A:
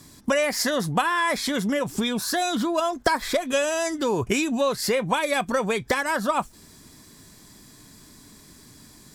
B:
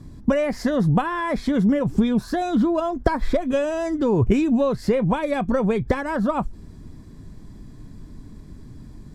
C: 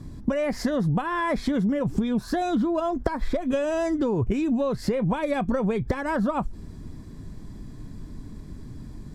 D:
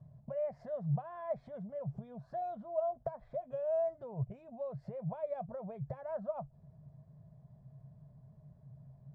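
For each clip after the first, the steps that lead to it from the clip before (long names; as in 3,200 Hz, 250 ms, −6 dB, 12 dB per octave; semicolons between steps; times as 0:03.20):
spectral tilt −4.5 dB per octave; level −2 dB
downward compressor 5 to 1, threshold −23 dBFS, peak gain reduction 10.5 dB; level +1.5 dB
pair of resonant band-passes 300 Hz, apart 2.2 octaves; level −4.5 dB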